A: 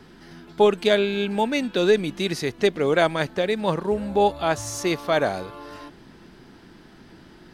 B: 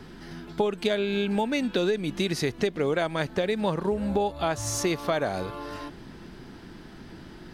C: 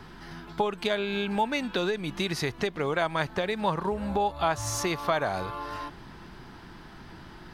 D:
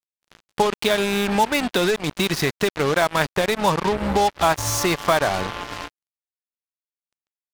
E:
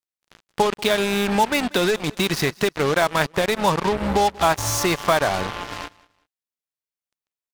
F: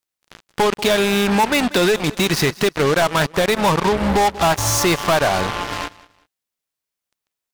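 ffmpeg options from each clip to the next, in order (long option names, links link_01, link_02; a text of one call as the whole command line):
ffmpeg -i in.wav -af "lowshelf=frequency=150:gain=5,acompressor=threshold=-24dB:ratio=10,volume=2dB" out.wav
ffmpeg -i in.wav -af "equalizer=frequency=250:width_type=o:width=1:gain=-5,equalizer=frequency=500:width_type=o:width=1:gain=-4,equalizer=frequency=1000:width_type=o:width=1:gain=6,equalizer=frequency=8000:width_type=o:width=1:gain=-3" out.wav
ffmpeg -i in.wav -af "acrusher=bits=4:mix=0:aa=0.5,volume=7.5dB" out.wav
ffmpeg -i in.wav -af "aecho=1:1:189|378:0.0708|0.0198" out.wav
ffmpeg -i in.wav -af "asoftclip=type=tanh:threshold=-20dB,volume=8.5dB" out.wav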